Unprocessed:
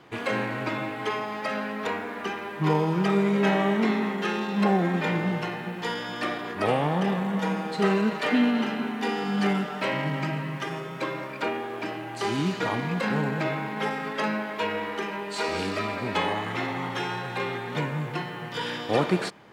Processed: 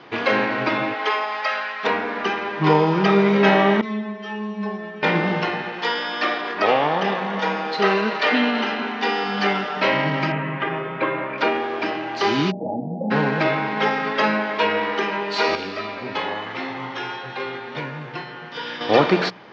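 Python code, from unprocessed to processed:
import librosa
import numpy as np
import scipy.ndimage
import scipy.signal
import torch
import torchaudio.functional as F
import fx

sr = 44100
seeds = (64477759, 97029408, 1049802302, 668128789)

y = fx.highpass(x, sr, hz=fx.line((0.93, 410.0), (1.83, 1200.0)), slope=12, at=(0.93, 1.83), fade=0.02)
y = fx.stiff_resonator(y, sr, f0_hz=210.0, decay_s=0.43, stiffness=0.002, at=(3.81, 5.03))
y = fx.highpass(y, sr, hz=420.0, slope=6, at=(5.62, 9.77))
y = fx.lowpass(y, sr, hz=2800.0, slope=24, at=(10.32, 11.38))
y = fx.cheby_ripple(y, sr, hz=850.0, ripple_db=9, at=(12.5, 13.1), fade=0.02)
y = fx.comb_fb(y, sr, f0_hz=130.0, decay_s=0.36, harmonics='all', damping=0.0, mix_pct=70, at=(15.55, 18.81))
y = scipy.signal.sosfilt(scipy.signal.butter(8, 5700.0, 'lowpass', fs=sr, output='sos'), y)
y = fx.low_shelf(y, sr, hz=140.0, db=-12.0)
y = fx.hum_notches(y, sr, base_hz=60, count=3)
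y = F.gain(torch.from_numpy(y), 9.0).numpy()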